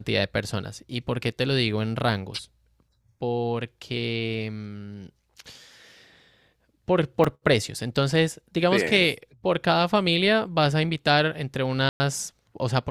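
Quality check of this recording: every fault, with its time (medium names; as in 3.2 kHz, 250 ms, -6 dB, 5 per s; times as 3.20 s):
7.24 s: dropout 4.7 ms
11.89–12.00 s: dropout 110 ms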